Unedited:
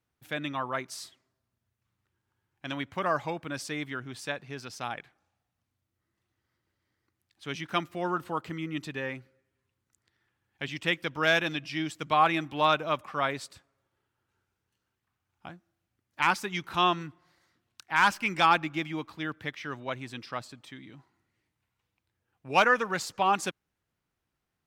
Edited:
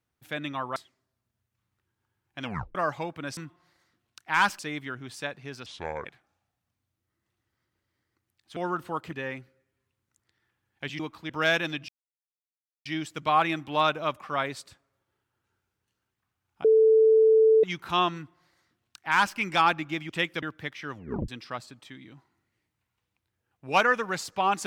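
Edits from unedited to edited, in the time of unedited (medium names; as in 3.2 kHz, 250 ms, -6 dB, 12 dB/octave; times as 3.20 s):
0.76–1.03 s: delete
2.70 s: tape stop 0.32 s
4.71–4.96 s: speed 65%
7.48–7.97 s: delete
8.53–8.91 s: delete
10.78–11.11 s: swap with 18.94–19.24 s
11.70 s: insert silence 0.97 s
15.49–16.48 s: bleep 441 Hz -15 dBFS
16.99–18.21 s: copy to 3.64 s
19.74 s: tape stop 0.36 s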